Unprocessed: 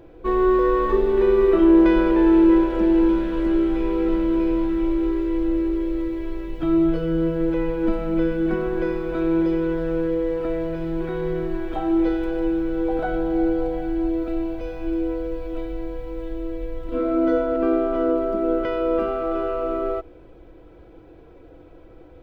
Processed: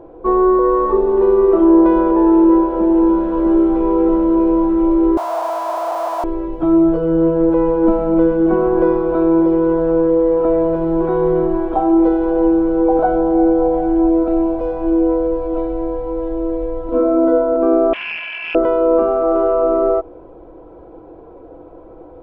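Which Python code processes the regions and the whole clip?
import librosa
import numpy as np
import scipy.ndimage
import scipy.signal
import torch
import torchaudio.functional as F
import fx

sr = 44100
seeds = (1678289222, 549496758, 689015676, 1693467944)

y = fx.chain(x, sr, fx.clip_1bit(),
    fx.ladder_highpass(hz=600.0, resonance_pct=55),
    fx.high_shelf(hz=3000.0, db=9.0), at=(5.17, 6.24))
y = fx.chain(y, sr, fx.freq_invert(carrier_hz=3000),
    fx.doppler_dist(depth_ms=0.34), at=(17.93, 18.55))
y = fx.curve_eq(y, sr, hz=(110.0, 1000.0, 1900.0, 4300.0), db=(0, 14, -2, 0))
y = fx.rider(y, sr, range_db=3, speed_s=0.5)
y = fx.high_shelf(y, sr, hz=2100.0, db=-11.5)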